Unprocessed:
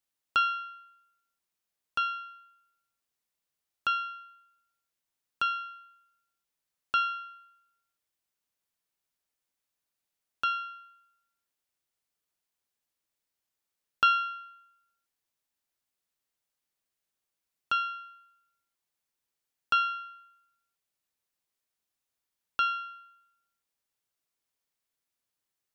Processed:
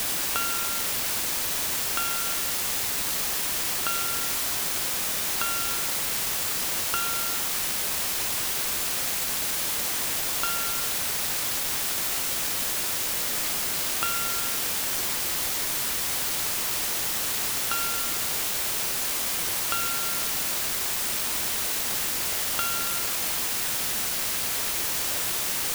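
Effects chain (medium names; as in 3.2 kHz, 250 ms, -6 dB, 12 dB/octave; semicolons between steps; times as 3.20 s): compression, threshold -39 dBFS, peak gain reduction 18.5 dB; word length cut 6-bit, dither triangular; trim +8.5 dB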